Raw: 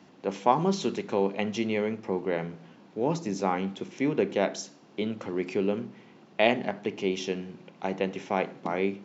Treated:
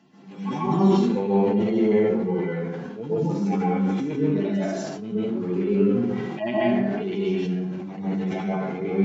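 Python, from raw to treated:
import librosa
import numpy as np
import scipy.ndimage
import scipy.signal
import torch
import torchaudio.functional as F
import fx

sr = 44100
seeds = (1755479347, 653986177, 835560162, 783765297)

y = fx.hpss_only(x, sr, part='harmonic')
y = fx.rev_plate(y, sr, seeds[0], rt60_s=0.76, hf_ratio=0.55, predelay_ms=120, drr_db=-9.0)
y = fx.sustainer(y, sr, db_per_s=28.0)
y = y * librosa.db_to_amplitude(-3.0)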